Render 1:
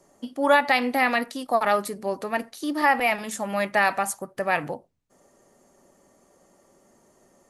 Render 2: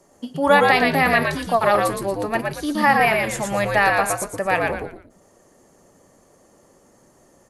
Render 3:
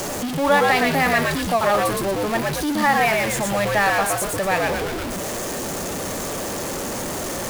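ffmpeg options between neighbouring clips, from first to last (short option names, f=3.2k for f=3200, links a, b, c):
-filter_complex "[0:a]asplit=5[a][b][c][d][e];[b]adelay=116,afreqshift=-83,volume=-3dB[f];[c]adelay=232,afreqshift=-166,volume=-12.6dB[g];[d]adelay=348,afreqshift=-249,volume=-22.3dB[h];[e]adelay=464,afreqshift=-332,volume=-31.9dB[i];[a][f][g][h][i]amix=inputs=5:normalize=0,volume=3dB"
-af "aeval=exprs='val(0)+0.5*0.133*sgn(val(0))':c=same,volume=-4dB"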